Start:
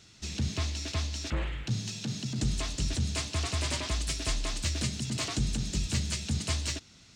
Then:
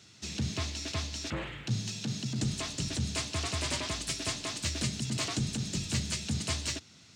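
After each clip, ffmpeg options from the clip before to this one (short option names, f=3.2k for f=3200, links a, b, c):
-af "highpass=f=86:w=0.5412,highpass=f=86:w=1.3066"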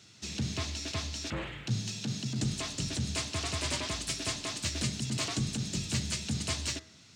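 -af "bandreject=f=80.07:t=h:w=4,bandreject=f=160.14:t=h:w=4,bandreject=f=240.21:t=h:w=4,bandreject=f=320.28:t=h:w=4,bandreject=f=400.35:t=h:w=4,bandreject=f=480.42:t=h:w=4,bandreject=f=560.49:t=h:w=4,bandreject=f=640.56:t=h:w=4,bandreject=f=720.63:t=h:w=4,bandreject=f=800.7:t=h:w=4,bandreject=f=880.77:t=h:w=4,bandreject=f=960.84:t=h:w=4,bandreject=f=1.04091k:t=h:w=4,bandreject=f=1.12098k:t=h:w=4,bandreject=f=1.20105k:t=h:w=4,bandreject=f=1.28112k:t=h:w=4,bandreject=f=1.36119k:t=h:w=4,bandreject=f=1.44126k:t=h:w=4,bandreject=f=1.52133k:t=h:w=4,bandreject=f=1.6014k:t=h:w=4,bandreject=f=1.68147k:t=h:w=4,bandreject=f=1.76154k:t=h:w=4,bandreject=f=1.84161k:t=h:w=4,bandreject=f=1.92168k:t=h:w=4,bandreject=f=2.00175k:t=h:w=4,bandreject=f=2.08182k:t=h:w=4,bandreject=f=2.16189k:t=h:w=4"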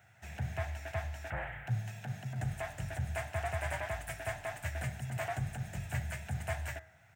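-af "firequalizer=gain_entry='entry(110,0);entry(240,-19);entry(390,-14);entry(730,10);entry(1100,-8);entry(1600,6);entry(2800,-11);entry(4300,-26);entry(8200,-12);entry(15000,7)':delay=0.05:min_phase=1"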